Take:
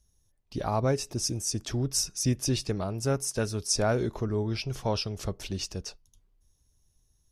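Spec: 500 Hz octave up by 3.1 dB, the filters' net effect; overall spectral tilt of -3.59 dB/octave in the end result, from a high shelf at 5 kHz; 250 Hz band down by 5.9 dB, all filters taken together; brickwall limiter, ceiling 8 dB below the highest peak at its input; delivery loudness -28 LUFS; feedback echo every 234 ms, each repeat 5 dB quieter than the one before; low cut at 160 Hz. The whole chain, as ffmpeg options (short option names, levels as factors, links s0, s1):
-af "highpass=160,equalizer=f=250:t=o:g=-9,equalizer=f=500:t=o:g=6.5,highshelf=f=5000:g=-5,alimiter=limit=0.0841:level=0:latency=1,aecho=1:1:234|468|702|936|1170|1404|1638:0.562|0.315|0.176|0.0988|0.0553|0.031|0.0173,volume=1.58"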